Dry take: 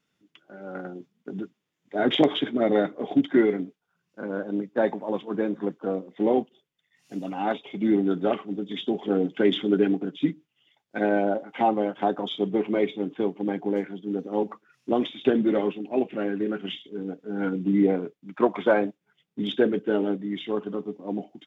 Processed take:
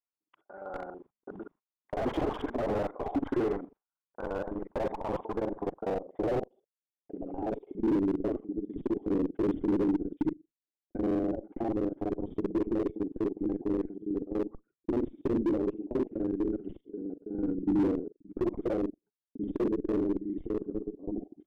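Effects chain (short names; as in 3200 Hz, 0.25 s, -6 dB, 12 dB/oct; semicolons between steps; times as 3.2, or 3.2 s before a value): local time reversal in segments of 41 ms; bell 170 Hz -15 dB 2.2 oct; gate -58 dBFS, range -25 dB; in parallel at -8 dB: Schmitt trigger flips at -30 dBFS; on the sum: low-pass sweep 1000 Hz -> 320 Hz, 4.98–8.1; slew limiter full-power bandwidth 22 Hz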